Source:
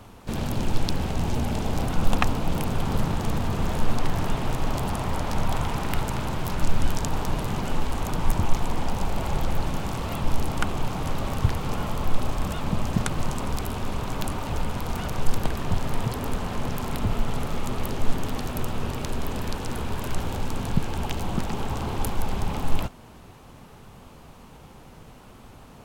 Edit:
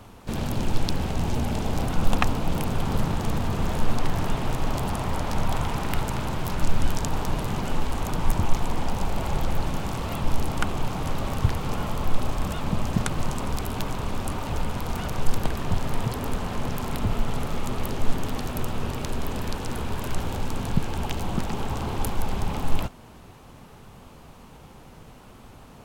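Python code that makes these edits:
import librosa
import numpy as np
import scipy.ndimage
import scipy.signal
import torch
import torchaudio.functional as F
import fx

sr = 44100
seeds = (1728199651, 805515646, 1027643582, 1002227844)

y = fx.edit(x, sr, fx.reverse_span(start_s=13.78, length_s=0.47), tone=tone)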